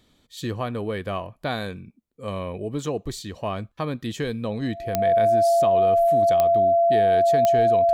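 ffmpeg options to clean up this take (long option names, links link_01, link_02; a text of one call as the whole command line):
ffmpeg -i in.wav -af "adeclick=threshold=4,bandreject=frequency=680:width=30" out.wav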